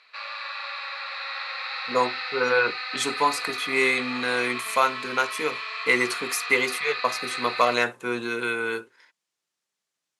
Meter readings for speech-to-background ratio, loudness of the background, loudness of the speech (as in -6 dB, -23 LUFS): 6.0 dB, -31.0 LUFS, -25.0 LUFS